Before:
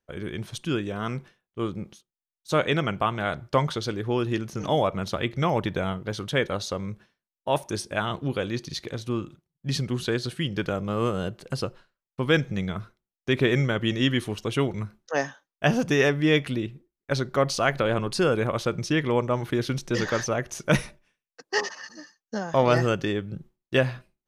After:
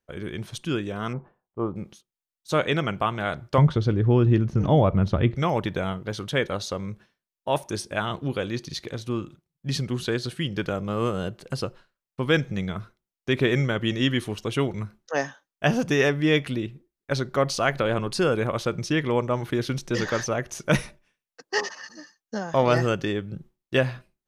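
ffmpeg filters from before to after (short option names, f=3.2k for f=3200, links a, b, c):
-filter_complex "[0:a]asettb=1/sr,asplit=3[a][b][c];[a]atrim=end=1.134[d];[b]atrim=start=1.13:end=1.76,asetpts=PTS-STARTPTS,afade=t=in:d=0.004:c=qsin,afade=t=out:st=0.626:d=0.004:c=qsin,lowpass=f=900:t=q:w=2.1[e];[c]atrim=start=1.756[f];[d][e]acrossfade=d=0.004:c1=hsin:c2=qsin[g];[g][f]acrossfade=d=0.004:c1=qsin:c2=hsin,asettb=1/sr,asplit=3[h][i][j];[h]atrim=end=3.584[k];[i]atrim=start=3.58:end=5.35,asetpts=PTS-STARTPTS,afade=t=in:d=0.004:c=qsin,afade=t=out:st=1.766:d=0.004:c=qsin,aemphasis=mode=reproduction:type=riaa[l];[j]atrim=start=5.346[m];[k][l]acrossfade=d=0.004:c1=hsin:c2=qsin[n];[n][m]acrossfade=d=0.004:c1=qsin:c2=hsin"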